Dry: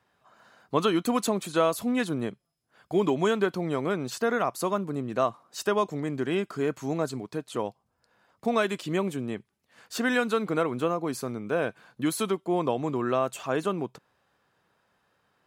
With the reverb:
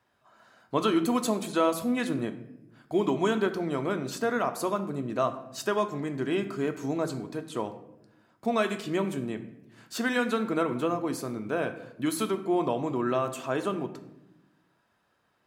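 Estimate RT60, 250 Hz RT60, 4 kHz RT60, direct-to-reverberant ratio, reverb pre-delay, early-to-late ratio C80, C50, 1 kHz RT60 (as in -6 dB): 0.90 s, 1.5 s, 0.55 s, 7.0 dB, 3 ms, 14.0 dB, 12.0 dB, 0.70 s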